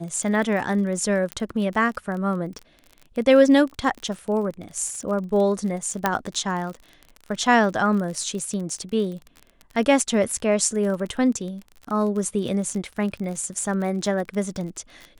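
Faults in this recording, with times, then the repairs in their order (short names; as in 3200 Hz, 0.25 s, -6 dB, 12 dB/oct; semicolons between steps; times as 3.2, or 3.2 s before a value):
crackle 38/s -30 dBFS
1.32 pop -13 dBFS
6.06 pop -6 dBFS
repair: de-click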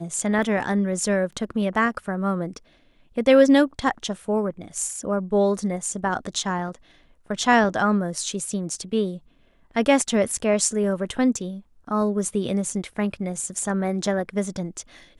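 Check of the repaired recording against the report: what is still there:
1.32 pop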